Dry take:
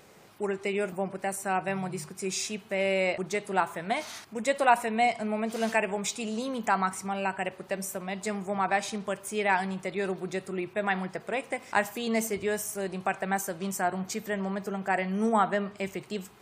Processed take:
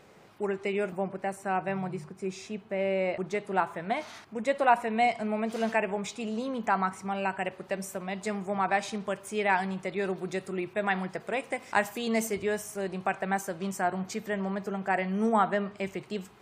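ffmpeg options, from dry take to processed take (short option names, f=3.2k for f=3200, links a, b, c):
-af "asetnsamples=n=441:p=0,asendcmd='1.06 lowpass f 2000;1.97 lowpass f 1100;3.13 lowpass f 2200;4.9 lowpass f 4700;5.62 lowpass f 2400;7.08 lowpass f 5100;10.16 lowpass f 11000;12.42 lowpass f 4400',lowpass=f=3.4k:p=1"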